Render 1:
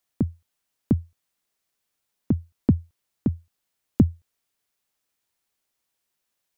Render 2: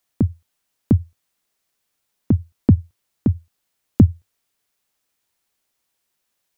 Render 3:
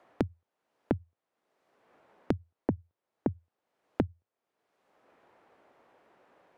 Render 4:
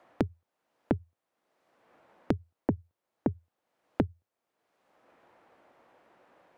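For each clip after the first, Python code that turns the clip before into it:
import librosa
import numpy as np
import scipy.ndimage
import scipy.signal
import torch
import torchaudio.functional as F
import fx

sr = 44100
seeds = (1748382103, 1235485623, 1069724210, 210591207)

y1 = fx.dynamic_eq(x, sr, hz=100.0, q=4.9, threshold_db=-40.0, ratio=4.0, max_db=8)
y1 = F.gain(torch.from_numpy(y1), 4.5).numpy()
y2 = fx.bandpass_q(y1, sr, hz=540.0, q=0.93)
y2 = fx.band_squash(y2, sr, depth_pct=100)
y2 = F.gain(torch.from_numpy(y2), -4.5).numpy()
y3 = fx.notch(y2, sr, hz=410.0, q=12.0)
y3 = F.gain(torch.from_numpy(y3), 1.5).numpy()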